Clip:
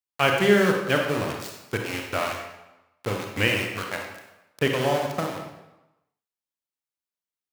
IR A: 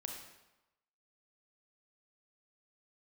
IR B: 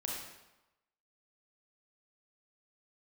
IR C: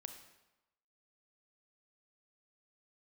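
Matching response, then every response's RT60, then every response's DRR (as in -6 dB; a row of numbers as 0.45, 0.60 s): A; 1.0, 1.0, 1.0 s; 1.5, -3.0, 6.0 dB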